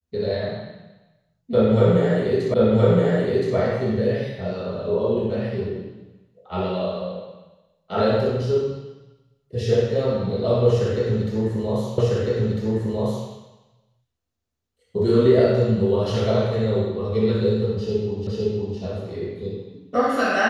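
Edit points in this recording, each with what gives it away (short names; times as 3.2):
2.54 repeat of the last 1.02 s
11.98 repeat of the last 1.3 s
18.27 repeat of the last 0.51 s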